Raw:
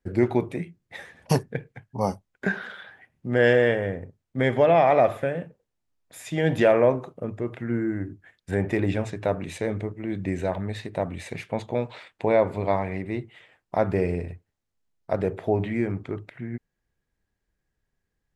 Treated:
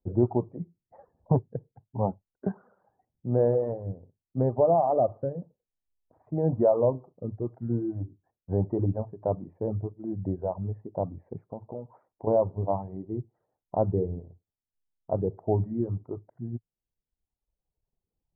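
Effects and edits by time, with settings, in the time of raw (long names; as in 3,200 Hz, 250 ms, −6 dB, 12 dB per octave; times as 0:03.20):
0:11.38–0:12.27: downward compressor 3 to 1, threshold −31 dBFS
whole clip: reverb reduction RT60 1.3 s; Butterworth low-pass 960 Hz 36 dB per octave; dynamic equaliser 110 Hz, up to +6 dB, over −42 dBFS, Q 2.2; level −2.5 dB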